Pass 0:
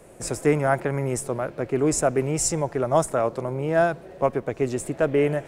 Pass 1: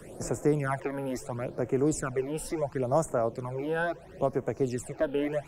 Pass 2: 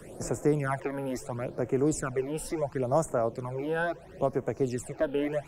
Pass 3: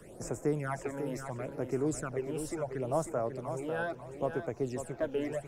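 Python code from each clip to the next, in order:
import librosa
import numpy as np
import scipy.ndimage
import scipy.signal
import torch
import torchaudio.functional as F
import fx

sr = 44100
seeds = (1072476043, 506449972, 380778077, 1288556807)

y1 = fx.phaser_stages(x, sr, stages=12, low_hz=110.0, high_hz=4200.0, hz=0.73, feedback_pct=30)
y1 = fx.band_squash(y1, sr, depth_pct=40)
y1 = F.gain(torch.from_numpy(y1), -4.5).numpy()
y2 = y1
y3 = fx.echo_feedback(y2, sr, ms=545, feedback_pct=24, wet_db=-8.0)
y3 = F.gain(torch.from_numpy(y3), -5.5).numpy()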